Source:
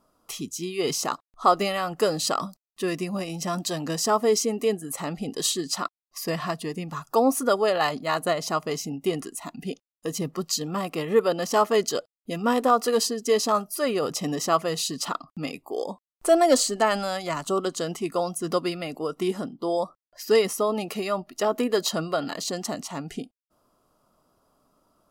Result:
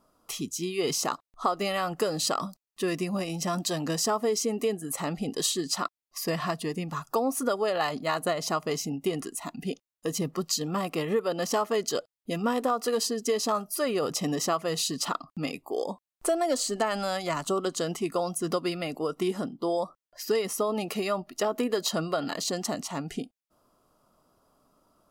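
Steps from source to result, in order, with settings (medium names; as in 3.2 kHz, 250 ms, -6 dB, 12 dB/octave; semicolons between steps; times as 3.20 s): compression 6:1, threshold -23 dBFS, peak gain reduction 10 dB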